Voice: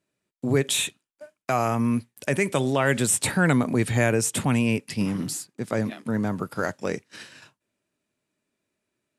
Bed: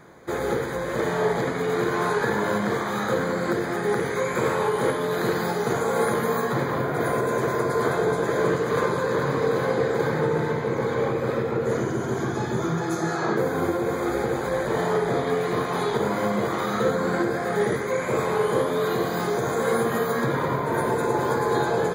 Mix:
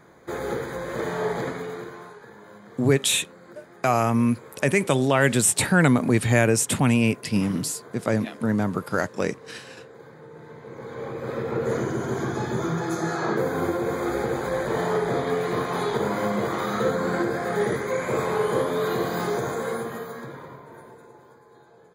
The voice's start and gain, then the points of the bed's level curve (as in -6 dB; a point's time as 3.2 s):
2.35 s, +2.5 dB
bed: 1.49 s -3.5 dB
2.2 s -22.5 dB
10.24 s -22.5 dB
11.58 s -1 dB
19.35 s -1 dB
21.45 s -30.5 dB